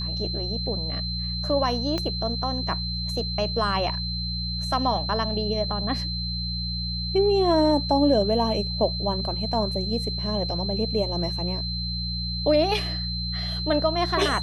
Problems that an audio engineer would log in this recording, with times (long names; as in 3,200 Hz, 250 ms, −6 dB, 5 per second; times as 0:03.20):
mains hum 60 Hz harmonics 3 −31 dBFS
whistle 4,100 Hz −30 dBFS
0:01.98: click −15 dBFS